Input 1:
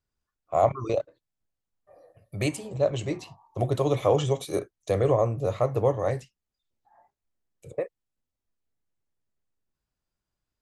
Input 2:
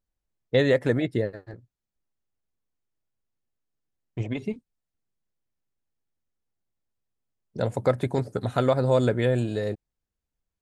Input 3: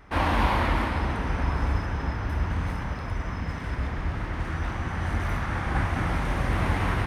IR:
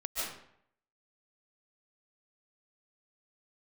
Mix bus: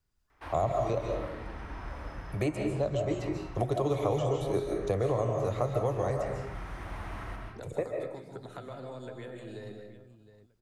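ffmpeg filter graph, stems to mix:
-filter_complex "[0:a]volume=0.944,asplit=3[s0][s1][s2];[s1]volume=0.596[s3];[1:a]acompressor=threshold=0.0631:ratio=6,volume=0.501,asplit=3[s4][s5][s6];[s5]volume=0.188[s7];[s6]volume=0.075[s8];[2:a]adelay=300,volume=0.141,asplit=2[s9][s10];[s10]volume=0.708[s11];[s2]apad=whole_len=324918[s12];[s9][s12]sidechaincompress=threshold=0.0112:ratio=8:attack=16:release=590[s13];[s4][s13]amix=inputs=2:normalize=0,highpass=f=210:w=0.5412,highpass=f=210:w=1.3066,acompressor=threshold=0.00708:ratio=4,volume=1[s14];[3:a]atrim=start_sample=2205[s15];[s3][s7][s11]amix=inputs=3:normalize=0[s16];[s16][s15]afir=irnorm=-1:irlink=0[s17];[s8]aecho=0:1:712|1424|2136:1|0.2|0.04[s18];[s0][s14][s17][s18]amix=inputs=4:normalize=0,lowshelf=f=130:g=4.5,acrossover=split=290|1800|4300[s19][s20][s21][s22];[s19]acompressor=threshold=0.02:ratio=4[s23];[s20]acompressor=threshold=0.0447:ratio=4[s24];[s21]acompressor=threshold=0.00178:ratio=4[s25];[s22]acompressor=threshold=0.00158:ratio=4[s26];[s23][s24][s25][s26]amix=inputs=4:normalize=0,equalizer=f=540:w=4:g=-3.5"

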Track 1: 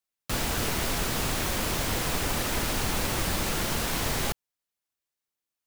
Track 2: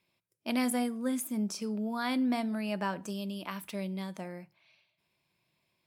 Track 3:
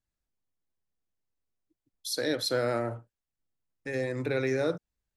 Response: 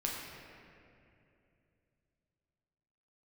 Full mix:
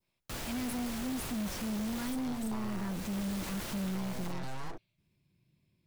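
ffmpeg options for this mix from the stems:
-filter_complex "[0:a]volume=0.335[s0];[1:a]asubboost=boost=10.5:cutoff=250,volume=0.531[s1];[2:a]aeval=exprs='abs(val(0))':c=same,volume=0.841,asplit=2[s2][s3];[s3]apad=whole_len=249608[s4];[s0][s4]sidechaincompress=threshold=0.0224:ratio=8:attack=6:release=560[s5];[s1][s2]amix=inputs=2:normalize=0,adynamicequalizer=threshold=0.00282:dfrequency=2500:dqfactor=0.94:tfrequency=2500:tqfactor=0.94:attack=5:release=100:ratio=0.375:range=2.5:mode=cutabove:tftype=bell,acompressor=threshold=0.0447:ratio=6,volume=1[s6];[s5][s6]amix=inputs=2:normalize=0,asoftclip=type=tanh:threshold=0.0266"

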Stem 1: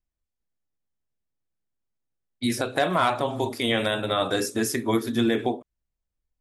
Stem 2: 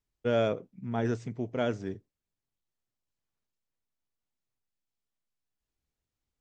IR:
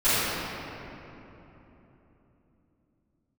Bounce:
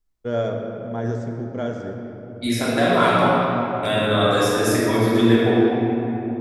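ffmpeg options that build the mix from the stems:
-filter_complex "[0:a]volume=0.668,asplit=3[s0][s1][s2];[s0]atrim=end=3.29,asetpts=PTS-STARTPTS,afade=t=out:st=3.286:d=0.004:c=hsin[s3];[s1]atrim=start=3.29:end=3.83,asetpts=PTS-STARTPTS,volume=0[s4];[s2]atrim=start=3.83,asetpts=PTS-STARTPTS,afade=t=in:d=0.004:c=hsin[s5];[s3][s4][s5]concat=n=3:v=0:a=1,asplit=2[s6][s7];[s7]volume=0.355[s8];[1:a]equalizer=f=2600:w=3.5:g=-12.5,volume=1.06,asplit=2[s9][s10];[s10]volume=0.1[s11];[2:a]atrim=start_sample=2205[s12];[s8][s11]amix=inputs=2:normalize=0[s13];[s13][s12]afir=irnorm=-1:irlink=0[s14];[s6][s9][s14]amix=inputs=3:normalize=0"

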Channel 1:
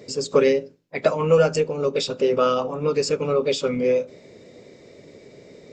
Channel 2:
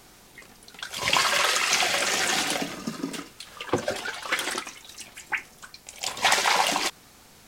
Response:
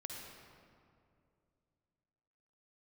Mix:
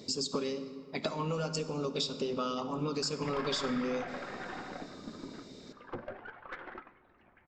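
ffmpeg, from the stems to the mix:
-filter_complex "[0:a]equalizer=f=125:t=o:w=1:g=-5,equalizer=f=250:t=o:w=1:g=5,equalizer=f=500:t=o:w=1:g=-11,equalizer=f=1000:t=o:w=1:g=3,equalizer=f=2000:t=o:w=1:g=-11,equalizer=f=4000:t=o:w=1:g=8,acompressor=threshold=0.0355:ratio=10,volume=0.631,asplit=2[s0][s1];[s1]volume=0.631[s2];[1:a]lowpass=f=1700:w=0.5412,lowpass=f=1700:w=1.3066,aeval=exprs='(tanh(12.6*val(0)+0.45)-tanh(0.45))/12.6':c=same,adelay=2200,volume=0.266,asplit=2[s3][s4];[s4]volume=0.188[s5];[2:a]atrim=start_sample=2205[s6];[s2][s5]amix=inputs=2:normalize=0[s7];[s7][s6]afir=irnorm=-1:irlink=0[s8];[s0][s3][s8]amix=inputs=3:normalize=0"

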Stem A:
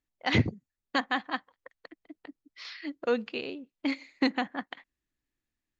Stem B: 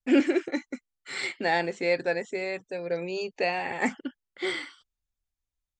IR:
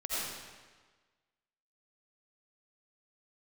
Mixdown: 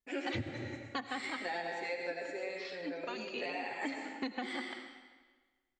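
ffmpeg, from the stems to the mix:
-filter_complex "[0:a]asplit=2[s0][s1];[s1]adelay=2.4,afreqshift=1.2[s2];[s0][s2]amix=inputs=2:normalize=1,volume=0.631,asplit=2[s3][s4];[s4]volume=0.188[s5];[1:a]acrossover=split=400[s6][s7];[s6]acompressor=threshold=0.00251:ratio=2[s8];[s8][s7]amix=inputs=2:normalize=0,asplit=2[s9][s10];[s10]adelay=10.1,afreqshift=-1.7[s11];[s9][s11]amix=inputs=2:normalize=1,volume=0.335,asplit=2[s12][s13];[s13]volume=0.631[s14];[2:a]atrim=start_sample=2205[s15];[s5][s14]amix=inputs=2:normalize=0[s16];[s16][s15]afir=irnorm=-1:irlink=0[s17];[s3][s12][s17]amix=inputs=3:normalize=0,acompressor=threshold=0.02:ratio=6"

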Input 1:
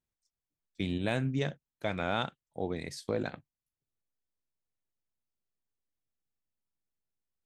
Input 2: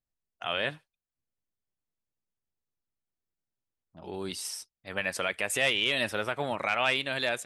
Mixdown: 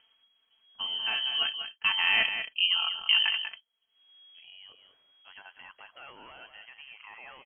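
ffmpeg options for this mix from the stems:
-filter_complex "[0:a]aecho=1:1:4.6:0.71,dynaudnorm=f=250:g=13:m=3.76,volume=0.596,asplit=3[s0][s1][s2];[s1]volume=0.376[s3];[1:a]aeval=exprs='0.106*(abs(mod(val(0)/0.106+3,4)-2)-1)':c=same,adelay=400,volume=0.112,asplit=2[s4][s5];[s5]volume=0.316[s6];[s2]apad=whole_len=346283[s7];[s4][s7]sidechaincompress=threshold=0.0178:ratio=8:attack=16:release=390[s8];[s3][s6]amix=inputs=2:normalize=0,aecho=0:1:192:1[s9];[s0][s8][s9]amix=inputs=3:normalize=0,acompressor=mode=upward:threshold=0.00708:ratio=2.5,lowpass=f=2800:t=q:w=0.5098,lowpass=f=2800:t=q:w=0.6013,lowpass=f=2800:t=q:w=0.9,lowpass=f=2800:t=q:w=2.563,afreqshift=-3300"

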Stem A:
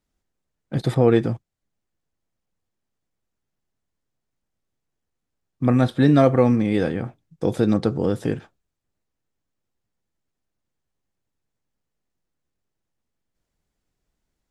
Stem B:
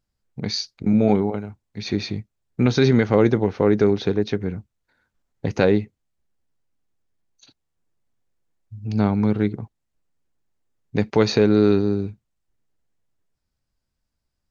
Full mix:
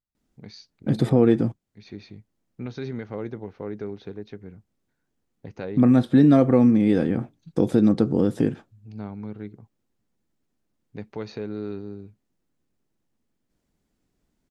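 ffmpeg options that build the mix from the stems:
-filter_complex "[0:a]equalizer=f=250:t=o:w=1.4:g=9,adelay=150,volume=1.19[s0];[1:a]highshelf=f=5500:g=-11,volume=0.168[s1];[s0][s1]amix=inputs=2:normalize=0,acompressor=threshold=0.0501:ratio=1.5"

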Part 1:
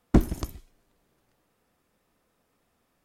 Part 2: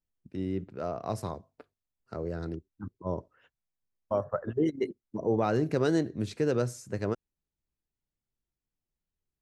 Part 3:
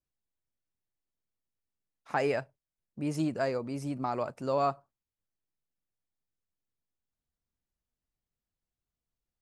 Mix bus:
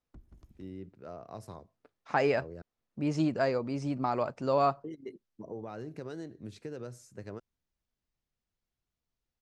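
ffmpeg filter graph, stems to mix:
-filter_complex "[0:a]highshelf=f=6500:g=-9.5,acrossover=split=130[s0][s1];[s1]acompressor=threshold=0.00794:ratio=2[s2];[s0][s2]amix=inputs=2:normalize=0,alimiter=limit=0.0631:level=0:latency=1:release=428,volume=0.1,asplit=2[s3][s4];[s4]volume=0.473[s5];[1:a]acompressor=threshold=0.0447:ratio=6,adelay=250,volume=0.316,asplit=3[s6][s7][s8];[s6]atrim=end=2.62,asetpts=PTS-STARTPTS,afade=t=out:st=2.616:d=0.004:c=hsin[s9];[s7]atrim=start=2.62:end=4.84,asetpts=PTS-STARTPTS,volume=0[s10];[s8]atrim=start=4.84,asetpts=PTS-STARTPTS,afade=t=in:d=0.004:c=hsin[s11];[s9][s10][s11]concat=n=3:v=0:a=1[s12];[2:a]lowpass=f=6500:w=0.5412,lowpass=f=6500:w=1.3066,volume=1.26[s13];[s5]aecho=0:1:182:1[s14];[s3][s12][s13][s14]amix=inputs=4:normalize=0"

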